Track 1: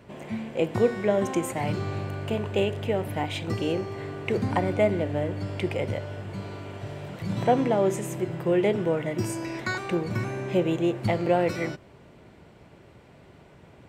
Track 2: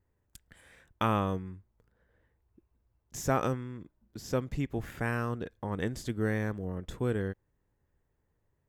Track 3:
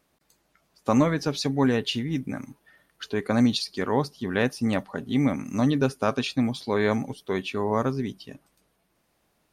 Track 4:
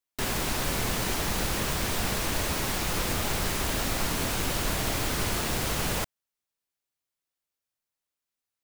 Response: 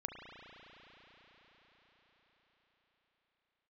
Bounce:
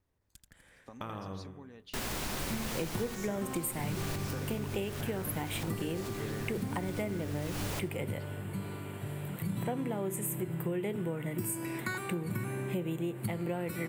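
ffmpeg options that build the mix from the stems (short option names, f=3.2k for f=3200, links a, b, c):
-filter_complex "[0:a]equalizer=f=160:t=o:w=0.67:g=6,equalizer=f=630:t=o:w=0.67:g=-7,equalizer=f=6.3k:t=o:w=0.67:g=-11,aexciter=amount=5.8:drive=6.9:freq=7.3k,lowshelf=f=61:g=-10,adelay=2200,volume=-2.5dB[a];[1:a]acompressor=threshold=-34dB:ratio=6,volume=-4.5dB,asplit=3[b][c][d];[c]volume=-5.5dB[e];[2:a]acompressor=threshold=-29dB:ratio=10,volume=-18.5dB[f];[3:a]adelay=1750,volume=-6dB,asplit=2[g][h];[h]volume=-17.5dB[i];[d]apad=whole_len=457974[j];[g][j]sidechaincompress=threshold=-50dB:ratio=8:attack=16:release=403[k];[e][i]amix=inputs=2:normalize=0,aecho=0:1:83|166|249|332|415|498|581|664:1|0.54|0.292|0.157|0.085|0.0459|0.0248|0.0134[l];[a][b][f][k][l]amix=inputs=5:normalize=0,acompressor=threshold=-31dB:ratio=6"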